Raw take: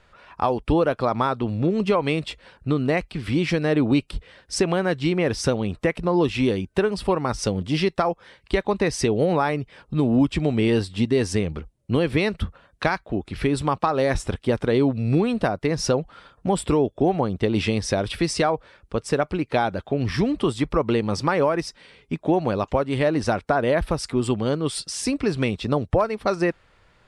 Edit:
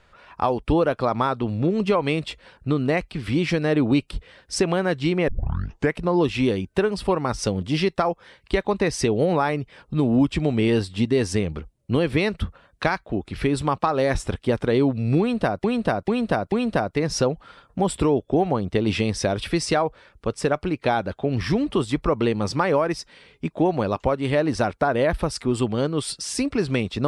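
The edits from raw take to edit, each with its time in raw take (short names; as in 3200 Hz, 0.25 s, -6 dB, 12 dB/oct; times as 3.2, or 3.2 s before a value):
5.28 tape start 0.66 s
15.2–15.64 loop, 4 plays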